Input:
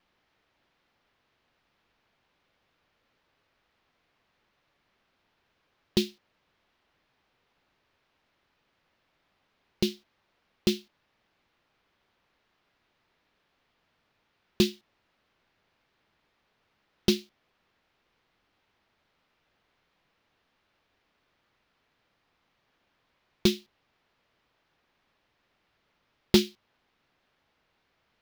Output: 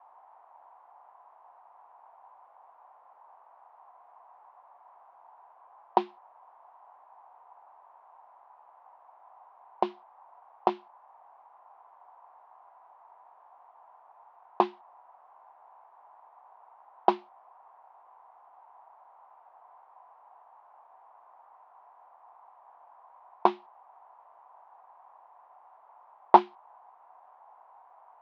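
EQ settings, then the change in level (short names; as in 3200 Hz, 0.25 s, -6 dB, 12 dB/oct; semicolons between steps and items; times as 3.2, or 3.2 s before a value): resonant high-pass 740 Hz, resonance Q 5.7; synth low-pass 1000 Hz, resonance Q 6.1; air absorption 53 m; +5.5 dB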